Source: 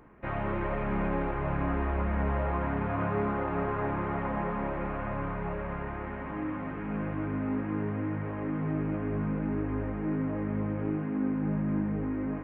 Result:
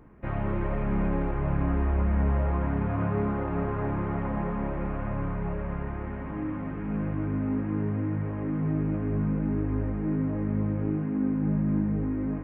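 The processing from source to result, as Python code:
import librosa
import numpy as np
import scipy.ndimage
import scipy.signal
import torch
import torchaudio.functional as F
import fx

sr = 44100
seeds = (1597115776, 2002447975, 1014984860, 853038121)

y = fx.low_shelf(x, sr, hz=330.0, db=10.0)
y = y * librosa.db_to_amplitude(-3.5)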